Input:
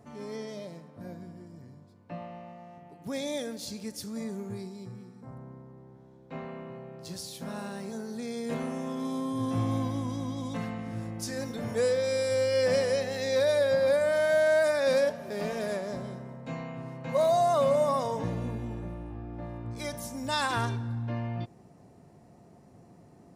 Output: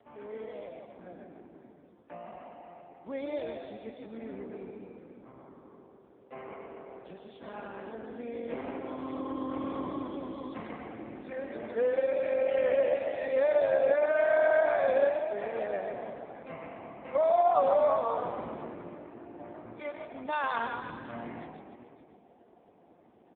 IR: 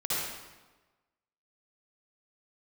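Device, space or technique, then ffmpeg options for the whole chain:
satellite phone: -filter_complex "[0:a]asplit=3[a][b][c];[a]afade=t=out:st=11.17:d=0.02[d];[b]equalizer=f=63:t=o:w=0.25:g=-2.5,afade=t=in:st=11.17:d=0.02,afade=t=out:st=11.83:d=0.02[e];[c]afade=t=in:st=11.83:d=0.02[f];[d][e][f]amix=inputs=3:normalize=0,asplit=7[g][h][i][j][k][l][m];[h]adelay=144,afreqshift=42,volume=-4.5dB[n];[i]adelay=288,afreqshift=84,volume=-10.5dB[o];[j]adelay=432,afreqshift=126,volume=-16.5dB[p];[k]adelay=576,afreqshift=168,volume=-22.6dB[q];[l]adelay=720,afreqshift=210,volume=-28.6dB[r];[m]adelay=864,afreqshift=252,volume=-34.6dB[s];[g][n][o][p][q][r][s]amix=inputs=7:normalize=0,highpass=330,lowpass=3.1k,aecho=1:1:561:0.133" -ar 8000 -c:a libopencore_amrnb -b:a 5150

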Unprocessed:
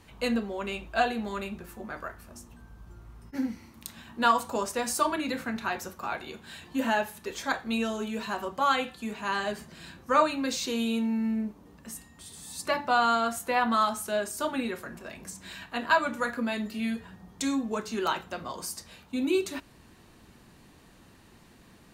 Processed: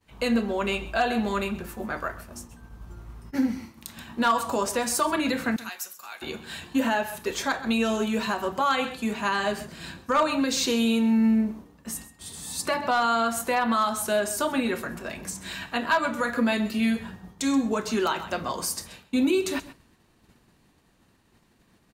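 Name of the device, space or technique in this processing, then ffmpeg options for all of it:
clipper into limiter: -filter_complex "[0:a]agate=range=-33dB:threshold=-45dB:ratio=3:detection=peak,asettb=1/sr,asplit=3[a][b][c];[a]atrim=end=5.564[d];[b]atrim=start=5.56:end=6.22,asetpts=PTS-STARTPTS,afade=t=in:d=0.004:c=qsin,afade=t=out:st=0.656:d=0.004:c=qsin,aderivative[e];[c]atrim=start=6.216[f];[d][e]acrossfade=d=0.004:c1=hsin:c2=qsin[g];[g][f]acrossfade=d=0.004:c1=qsin:c2=hsin,aecho=1:1:130:0.141,asoftclip=type=hard:threshold=-15.5dB,alimiter=limit=-22dB:level=0:latency=1:release=158,volume=7dB"

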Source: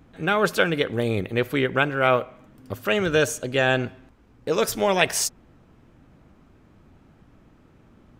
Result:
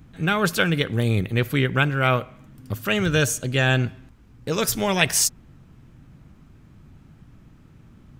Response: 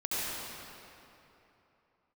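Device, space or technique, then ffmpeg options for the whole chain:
smiley-face EQ: -af "equalizer=f=140:t=o:w=0.76:g=5,lowshelf=f=200:g=5,equalizer=f=550:t=o:w=1.7:g=-6,highshelf=f=5.1k:g=5.5,volume=1dB"

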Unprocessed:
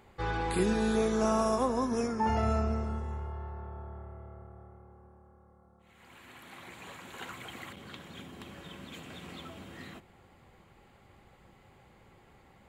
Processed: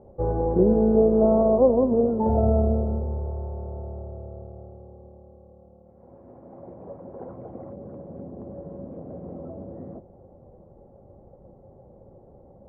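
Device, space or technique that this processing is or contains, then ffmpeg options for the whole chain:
under water: -af "lowpass=f=680:w=0.5412,lowpass=f=680:w=1.3066,equalizer=f=560:t=o:w=0.43:g=9.5,volume=8.5dB"

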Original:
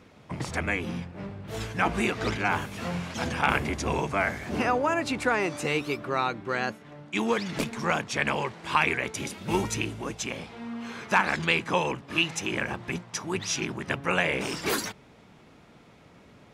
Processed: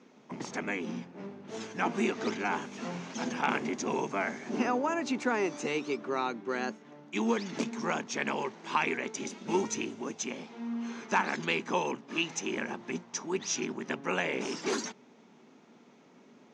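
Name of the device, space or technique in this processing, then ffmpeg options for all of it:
television speaker: -af "highpass=f=170:w=0.5412,highpass=f=170:w=1.3066,equalizer=f=240:t=q:w=4:g=9,equalizer=f=390:t=q:w=4:g=7,equalizer=f=890:t=q:w=4:g=4,equalizer=f=6.3k:t=q:w=4:g=9,lowpass=f=7.1k:w=0.5412,lowpass=f=7.1k:w=1.3066,volume=-7dB"

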